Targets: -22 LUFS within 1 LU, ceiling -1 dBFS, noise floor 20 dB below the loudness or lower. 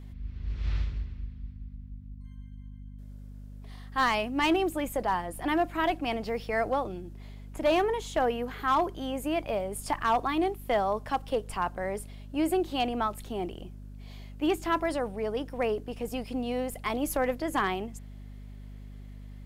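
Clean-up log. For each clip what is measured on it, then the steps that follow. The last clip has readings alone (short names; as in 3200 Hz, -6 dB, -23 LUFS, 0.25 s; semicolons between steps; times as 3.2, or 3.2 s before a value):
clipped 0.3%; flat tops at -18.5 dBFS; hum 50 Hz; harmonics up to 250 Hz; hum level -41 dBFS; loudness -30.0 LUFS; peak -18.5 dBFS; loudness target -22.0 LUFS
-> clip repair -18.5 dBFS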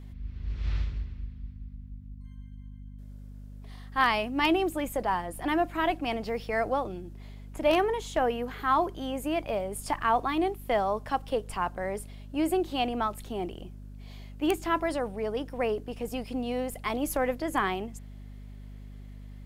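clipped 0.0%; hum 50 Hz; harmonics up to 250 Hz; hum level -41 dBFS
-> de-hum 50 Hz, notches 5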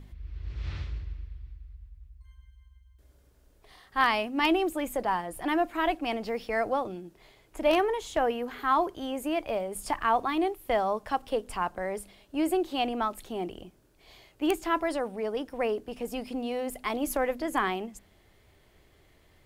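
hum none; loudness -30.0 LUFS; peak -9.5 dBFS; loudness target -22.0 LUFS
-> gain +8 dB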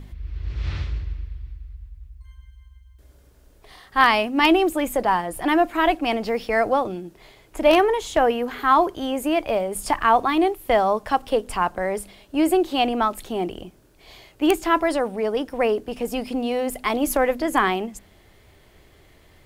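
loudness -22.0 LUFS; peak -1.5 dBFS; noise floor -54 dBFS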